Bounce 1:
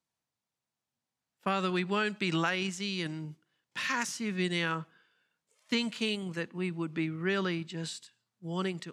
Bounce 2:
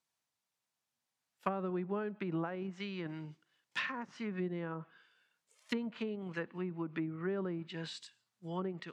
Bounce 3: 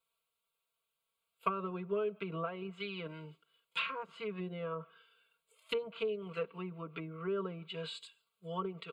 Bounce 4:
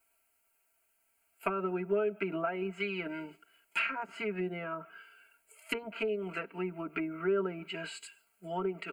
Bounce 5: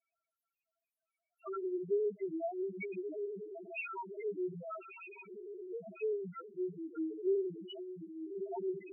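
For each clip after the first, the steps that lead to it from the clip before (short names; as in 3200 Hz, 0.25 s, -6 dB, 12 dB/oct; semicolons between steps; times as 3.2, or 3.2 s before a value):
treble ducked by the level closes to 600 Hz, closed at -28 dBFS; low shelf 490 Hz -9 dB; gain +2 dB
fixed phaser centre 1200 Hz, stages 8; comb 4.4 ms, depth 87%; gain +2.5 dB
in parallel at +3 dB: compressor, threshold -46 dBFS, peak gain reduction 18 dB; on the sum: fixed phaser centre 730 Hz, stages 8; gain +7 dB
diffused feedback echo 1.259 s, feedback 51%, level -5.5 dB; loudest bins only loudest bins 1; gain +3 dB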